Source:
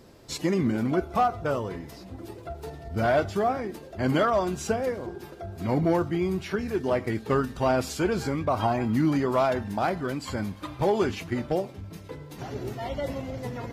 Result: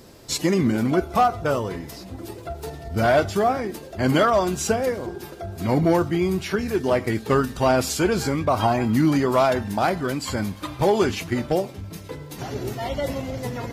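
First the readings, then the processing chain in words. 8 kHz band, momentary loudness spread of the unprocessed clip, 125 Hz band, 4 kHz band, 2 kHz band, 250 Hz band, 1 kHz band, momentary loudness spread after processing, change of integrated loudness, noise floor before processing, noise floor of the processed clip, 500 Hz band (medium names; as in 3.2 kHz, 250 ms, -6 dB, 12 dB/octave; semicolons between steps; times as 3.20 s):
+10.0 dB, 15 LU, +4.5 dB, +7.5 dB, +5.5 dB, +4.5 dB, +5.0 dB, 15 LU, +5.0 dB, -45 dBFS, -40 dBFS, +4.5 dB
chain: treble shelf 4.2 kHz +7 dB; trim +4.5 dB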